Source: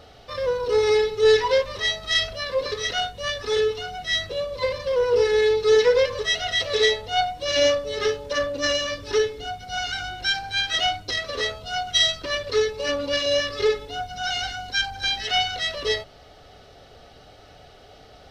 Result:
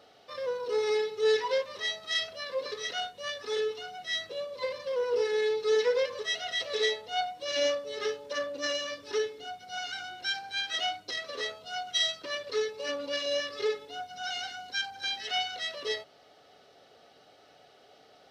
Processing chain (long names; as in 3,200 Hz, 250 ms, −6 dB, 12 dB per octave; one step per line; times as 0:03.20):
high-pass filter 230 Hz 12 dB per octave
level −8.5 dB